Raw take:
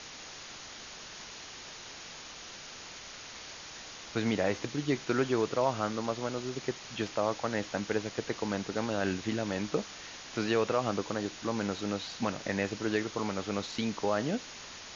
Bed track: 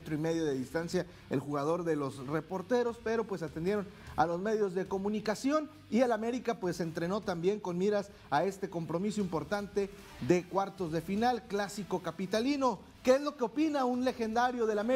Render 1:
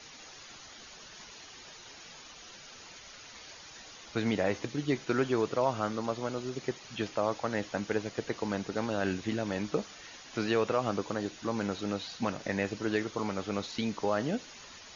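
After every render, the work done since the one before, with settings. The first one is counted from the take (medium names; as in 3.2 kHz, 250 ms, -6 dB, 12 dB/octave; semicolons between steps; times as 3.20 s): noise reduction 9 dB, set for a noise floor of -47 dBFS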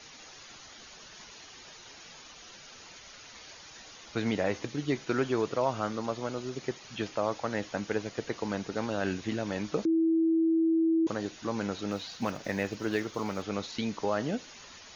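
9.85–11.07 s: bleep 326 Hz -22 dBFS; 11.91–13.44 s: block-companded coder 7-bit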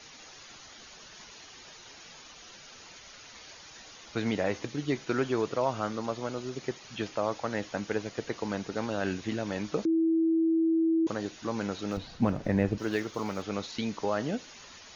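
11.97–12.78 s: tilt EQ -3.5 dB/octave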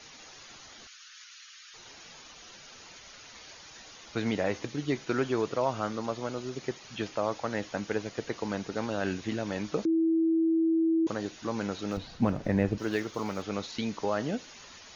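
0.87–1.74 s: elliptic high-pass 1.3 kHz, stop band 60 dB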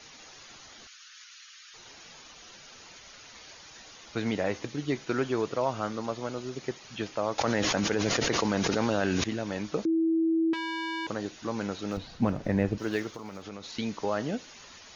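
7.38–9.24 s: level flattener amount 100%; 10.53–11.08 s: transformer saturation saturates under 1.8 kHz; 13.11–13.66 s: compression, threshold -36 dBFS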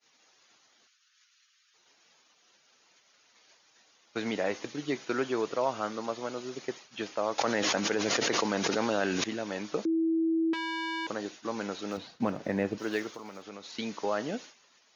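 expander -39 dBFS; Bessel high-pass 260 Hz, order 2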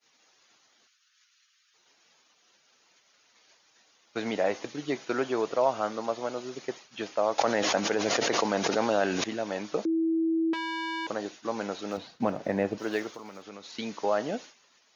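dynamic bell 680 Hz, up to +6 dB, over -43 dBFS, Q 1.5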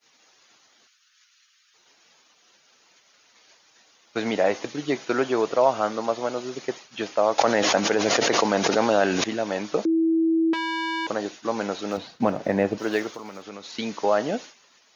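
trim +5.5 dB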